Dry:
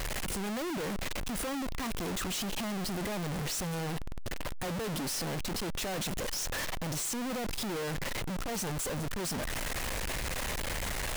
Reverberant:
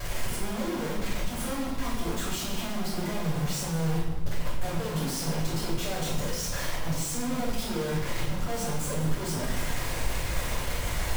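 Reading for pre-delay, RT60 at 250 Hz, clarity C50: 3 ms, 1.5 s, 2.0 dB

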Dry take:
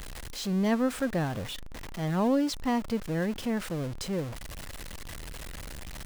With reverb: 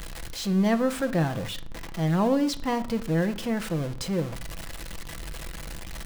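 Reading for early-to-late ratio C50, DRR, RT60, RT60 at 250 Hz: 17.0 dB, 7.5 dB, 0.50 s, 0.80 s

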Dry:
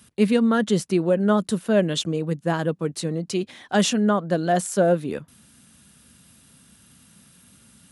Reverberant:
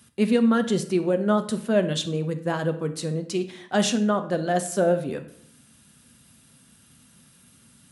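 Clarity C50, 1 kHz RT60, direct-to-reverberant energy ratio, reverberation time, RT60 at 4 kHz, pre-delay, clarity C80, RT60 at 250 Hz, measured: 12.5 dB, 0.65 s, 7.5 dB, 0.70 s, 0.50 s, 8 ms, 16.0 dB, 0.90 s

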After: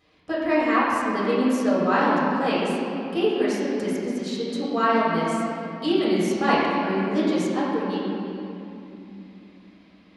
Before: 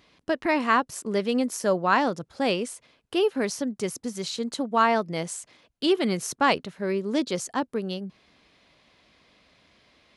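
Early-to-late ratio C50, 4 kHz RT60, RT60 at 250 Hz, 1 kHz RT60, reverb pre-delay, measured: -2.5 dB, 1.9 s, 4.4 s, 2.8 s, 4 ms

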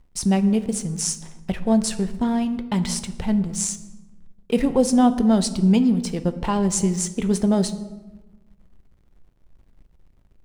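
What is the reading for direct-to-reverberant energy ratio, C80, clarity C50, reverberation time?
10.0 dB, 15.5 dB, 14.0 dB, 1.1 s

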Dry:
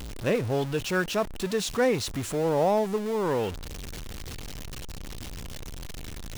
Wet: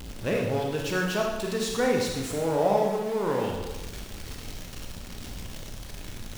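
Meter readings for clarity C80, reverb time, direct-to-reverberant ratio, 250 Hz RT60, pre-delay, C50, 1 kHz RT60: 5.0 dB, 1.1 s, -0.5 dB, 1.1 s, 24 ms, 2.0 dB, 1.1 s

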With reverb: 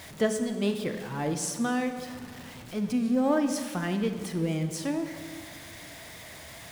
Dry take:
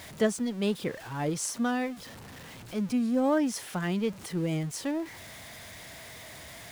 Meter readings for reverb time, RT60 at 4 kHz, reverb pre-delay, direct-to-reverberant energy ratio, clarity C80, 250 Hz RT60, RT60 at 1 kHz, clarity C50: 2.0 s, 1.4 s, 21 ms, 7.0 dB, 9.5 dB, 2.4 s, 1.9 s, 8.0 dB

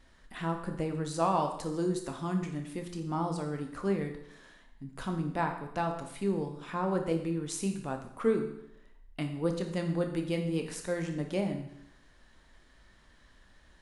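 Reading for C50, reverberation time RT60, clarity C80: 7.5 dB, 0.75 s, 10.0 dB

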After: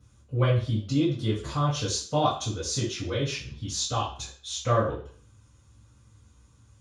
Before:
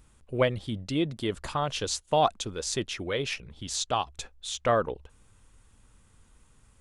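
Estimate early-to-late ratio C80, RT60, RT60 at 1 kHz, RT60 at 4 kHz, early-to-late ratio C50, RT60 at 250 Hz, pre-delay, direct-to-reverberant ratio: 10.0 dB, 0.45 s, 0.45 s, 0.45 s, 5.0 dB, 0.50 s, 3 ms, -10.0 dB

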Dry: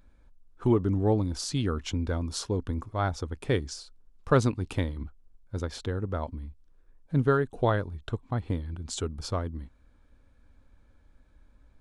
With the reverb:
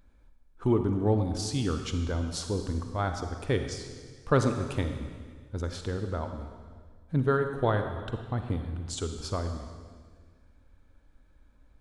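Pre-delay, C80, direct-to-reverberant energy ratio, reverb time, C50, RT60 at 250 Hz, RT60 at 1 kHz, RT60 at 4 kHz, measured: 39 ms, 8.0 dB, 6.0 dB, 1.7 s, 6.5 dB, 1.8 s, 1.6 s, 1.6 s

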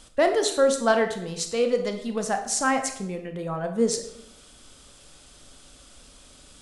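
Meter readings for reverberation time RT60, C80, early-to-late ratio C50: 0.75 s, 12.0 dB, 8.5 dB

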